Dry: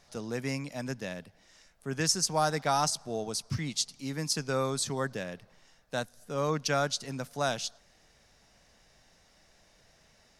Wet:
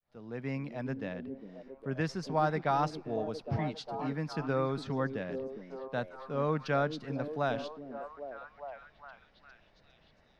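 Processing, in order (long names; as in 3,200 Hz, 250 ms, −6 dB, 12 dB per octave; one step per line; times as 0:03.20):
fade in at the beginning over 0.60 s
high-frequency loss of the air 380 metres
echo through a band-pass that steps 405 ms, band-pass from 280 Hz, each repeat 0.7 octaves, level −4 dB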